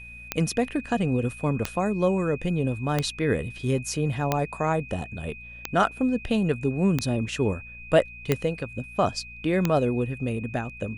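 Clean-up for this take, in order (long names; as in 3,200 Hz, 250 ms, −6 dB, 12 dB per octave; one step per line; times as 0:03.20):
click removal
hum removal 58.7 Hz, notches 4
notch filter 2,500 Hz, Q 30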